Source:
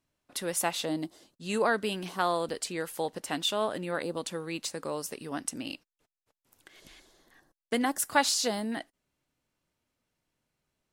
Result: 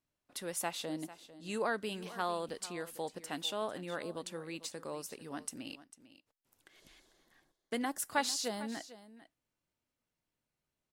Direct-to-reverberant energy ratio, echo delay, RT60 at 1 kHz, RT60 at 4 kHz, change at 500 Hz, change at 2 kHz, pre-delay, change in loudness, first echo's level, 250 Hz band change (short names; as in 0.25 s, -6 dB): none, 0.448 s, none, none, -7.5 dB, -7.5 dB, none, -7.5 dB, -16.0 dB, -7.5 dB